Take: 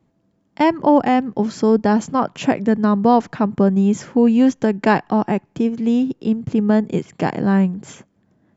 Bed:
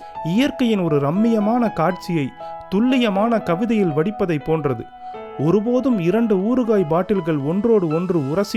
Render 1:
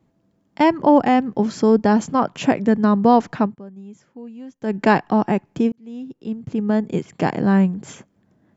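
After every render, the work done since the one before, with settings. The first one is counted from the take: 3.42–4.75 dip -23 dB, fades 0.14 s; 5.72–7.25 fade in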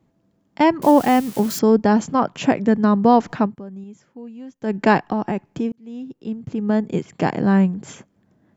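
0.82–1.59 switching spikes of -21.5 dBFS; 3.26–3.84 upward compressor, threshold -28 dBFS; 5.12–6.67 compressor 2.5:1, threshold -20 dBFS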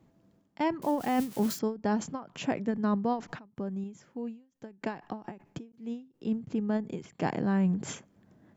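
reverse; compressor 6:1, threshold -25 dBFS, peak gain reduction 15 dB; reverse; ending taper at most 170 dB/s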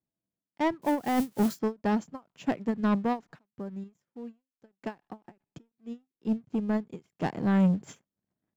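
sample leveller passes 2; upward expander 2.5:1, over -36 dBFS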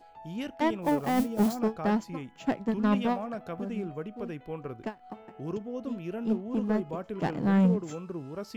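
add bed -18.5 dB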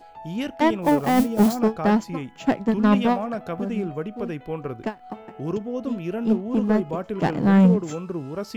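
gain +7.5 dB

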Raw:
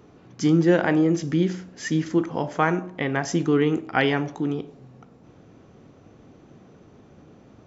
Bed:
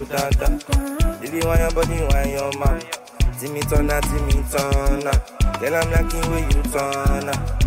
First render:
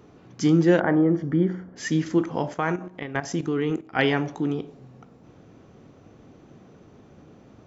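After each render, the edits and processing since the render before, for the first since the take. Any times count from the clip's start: 0.8–1.76 polynomial smoothing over 41 samples; 2.54–3.99 level quantiser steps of 12 dB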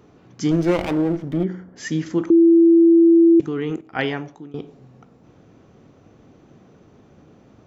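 0.51–1.44 minimum comb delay 0.34 ms; 2.3–3.4 bleep 334 Hz -8.5 dBFS; 3.92–4.54 fade out, to -21 dB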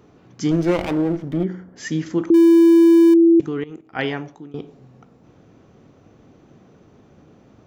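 2.34–3.14 zero-crossing step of -23.5 dBFS; 3.64–4.06 fade in linear, from -17.5 dB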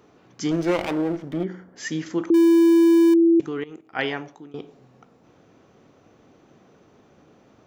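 low shelf 250 Hz -10.5 dB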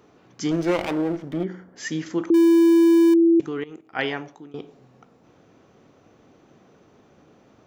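nothing audible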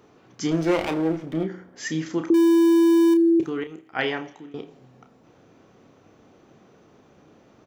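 doubler 31 ms -9 dB; thin delay 82 ms, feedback 66%, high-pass 1900 Hz, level -23 dB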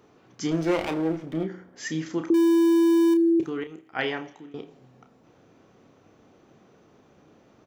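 gain -2.5 dB

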